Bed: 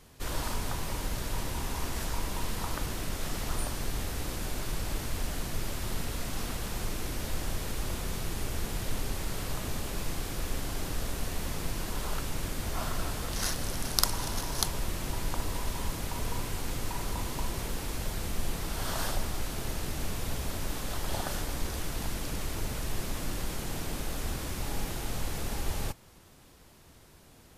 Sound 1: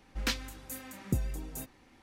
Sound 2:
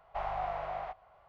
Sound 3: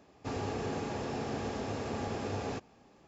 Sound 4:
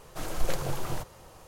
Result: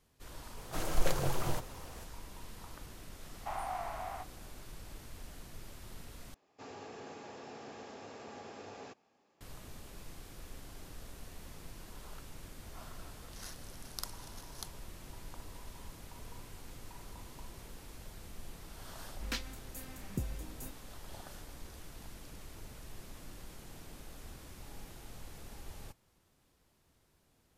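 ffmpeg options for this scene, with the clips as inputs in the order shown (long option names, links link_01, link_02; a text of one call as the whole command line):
ffmpeg -i bed.wav -i cue0.wav -i cue1.wav -i cue2.wav -i cue3.wav -filter_complex "[0:a]volume=-15.5dB[link_01];[2:a]highpass=frequency=690:width=0.5412,highpass=frequency=690:width=1.3066[link_02];[3:a]highpass=frequency=420:poles=1[link_03];[link_01]asplit=2[link_04][link_05];[link_04]atrim=end=6.344[link_06];[link_03]atrim=end=3.07,asetpts=PTS-STARTPTS,volume=-9dB[link_07];[link_05]atrim=start=9.406[link_08];[4:a]atrim=end=1.47,asetpts=PTS-STARTPTS,volume=-1dB,afade=type=in:duration=0.004:curve=hsin,afade=type=out:start_time=1.466:duration=0.004:curve=hsin,adelay=570[link_09];[link_02]atrim=end=1.28,asetpts=PTS-STARTPTS,volume=-2dB,afade=type=in:duration=0.004:curve=hsin,afade=type=out:start_time=1.276:duration=0.004:curve=hsin,adelay=3310[link_10];[1:a]atrim=end=2.02,asetpts=PTS-STARTPTS,volume=-6.5dB,afade=type=in:duration=0.004:curve=hsin,afade=type=out:start_time=2.016:duration=0.004:curve=hsin,adelay=19050[link_11];[link_06][link_07]acrossfade=duration=0.004:curve1=hsin:curve2=hsin[link_12];[link_12][link_08]acrossfade=duration=0.004:curve1=hsin:curve2=hsin[link_13];[link_13][link_09][link_10][link_11]amix=inputs=4:normalize=0" out.wav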